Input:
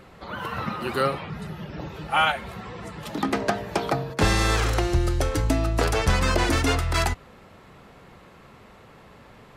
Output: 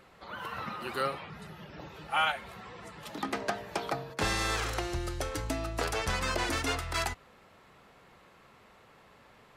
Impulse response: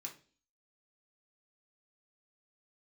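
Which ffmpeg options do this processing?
-af "lowshelf=f=410:g=-8,volume=0.501"

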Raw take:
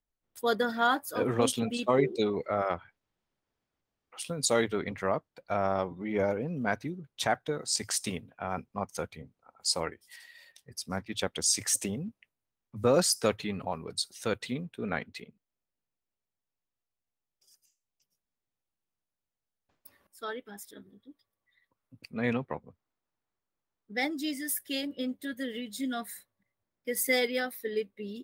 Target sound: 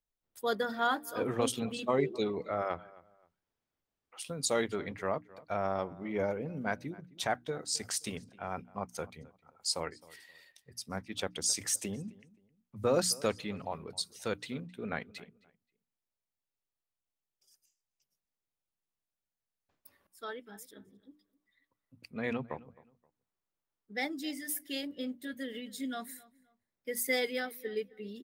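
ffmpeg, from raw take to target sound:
-filter_complex "[0:a]bandreject=f=60:t=h:w=6,bandreject=f=120:t=h:w=6,bandreject=f=180:t=h:w=6,bandreject=f=240:t=h:w=6,bandreject=f=300:t=h:w=6,asplit=2[s0][s1];[s1]adelay=263,lowpass=f=2800:p=1,volume=0.0891,asplit=2[s2][s3];[s3]adelay=263,lowpass=f=2800:p=1,volume=0.28[s4];[s2][s4]amix=inputs=2:normalize=0[s5];[s0][s5]amix=inputs=2:normalize=0,volume=0.631"

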